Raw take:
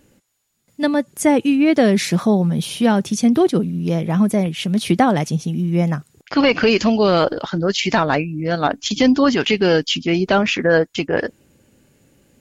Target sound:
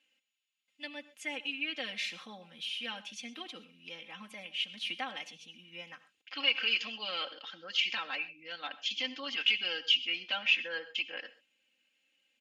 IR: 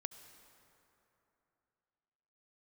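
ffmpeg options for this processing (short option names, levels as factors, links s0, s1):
-filter_complex "[0:a]bandpass=f=2800:t=q:w=4.1:csg=0,aecho=1:1:3.8:0.84[s0];[1:a]atrim=start_sample=2205,atrim=end_sample=6174[s1];[s0][s1]afir=irnorm=-1:irlink=0,volume=0.794"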